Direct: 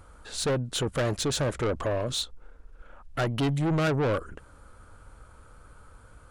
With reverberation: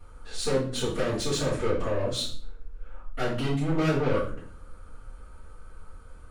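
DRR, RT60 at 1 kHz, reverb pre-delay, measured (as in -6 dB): -10.5 dB, 0.45 s, 3 ms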